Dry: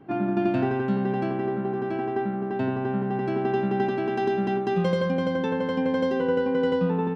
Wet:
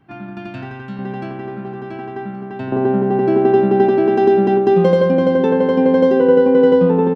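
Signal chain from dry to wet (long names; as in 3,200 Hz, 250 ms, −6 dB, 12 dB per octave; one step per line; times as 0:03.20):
parametric band 410 Hz −14 dB 2.2 octaves, from 0:00.99 −5 dB, from 0:02.72 +10.5 dB
single-tap delay 1,122 ms −18.5 dB
level +3 dB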